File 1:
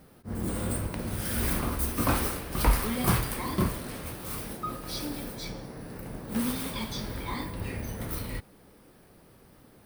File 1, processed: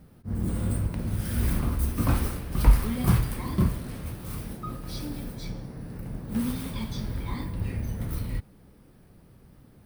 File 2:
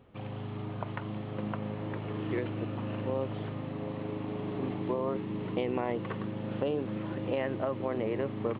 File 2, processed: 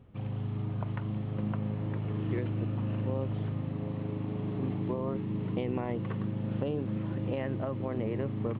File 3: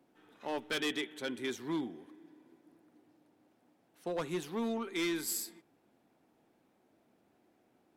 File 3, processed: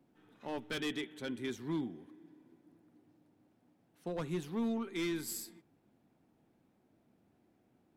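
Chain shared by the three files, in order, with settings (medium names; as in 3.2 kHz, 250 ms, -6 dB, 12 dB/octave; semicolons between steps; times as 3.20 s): tone controls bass +11 dB, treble -1 dB; trim -4.5 dB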